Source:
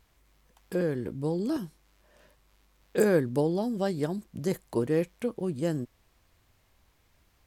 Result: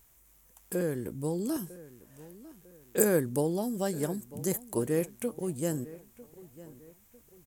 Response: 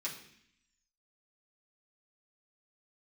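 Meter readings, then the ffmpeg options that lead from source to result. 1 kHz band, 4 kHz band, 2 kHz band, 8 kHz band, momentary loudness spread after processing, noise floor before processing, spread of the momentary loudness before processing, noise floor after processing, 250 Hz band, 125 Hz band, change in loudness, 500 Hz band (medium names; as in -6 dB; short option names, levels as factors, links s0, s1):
-2.5 dB, -2.0 dB, -2.5 dB, +11.0 dB, 23 LU, -67 dBFS, 10 LU, -62 dBFS, -2.5 dB, -2.5 dB, -2.0 dB, -2.5 dB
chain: -filter_complex "[0:a]aexciter=amount=6.2:drive=3.6:freq=6300,asplit=2[s0][s1];[s1]adelay=950,lowpass=f=3200:p=1,volume=0.126,asplit=2[s2][s3];[s3]adelay=950,lowpass=f=3200:p=1,volume=0.4,asplit=2[s4][s5];[s5]adelay=950,lowpass=f=3200:p=1,volume=0.4[s6];[s0][s2][s4][s6]amix=inputs=4:normalize=0,volume=0.75"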